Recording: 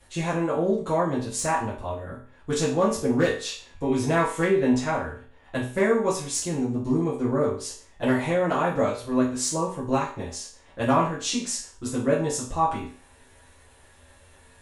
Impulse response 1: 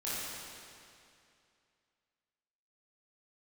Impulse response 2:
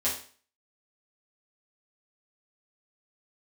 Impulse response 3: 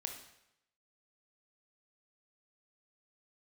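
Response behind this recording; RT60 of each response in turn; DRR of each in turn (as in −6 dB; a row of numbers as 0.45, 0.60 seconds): 2; 2.5, 0.45, 0.80 seconds; −10.5, −8.5, 3.5 decibels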